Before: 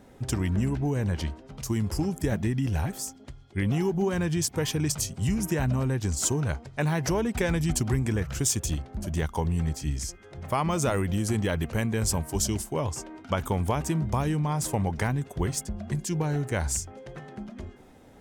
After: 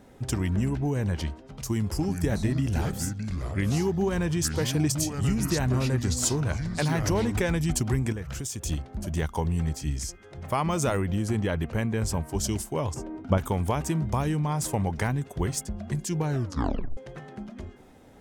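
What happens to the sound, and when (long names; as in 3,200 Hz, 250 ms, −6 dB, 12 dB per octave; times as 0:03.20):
0:01.68–0:07.40: delay with pitch and tempo change per echo 377 ms, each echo −4 semitones, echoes 2, each echo −6 dB
0:08.12–0:08.66: downward compressor, threshold −30 dBFS
0:10.97–0:12.44: high-shelf EQ 4,100 Hz −8.5 dB
0:12.94–0:13.38: tilt shelving filter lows +8.5 dB, about 920 Hz
0:16.31: tape stop 0.66 s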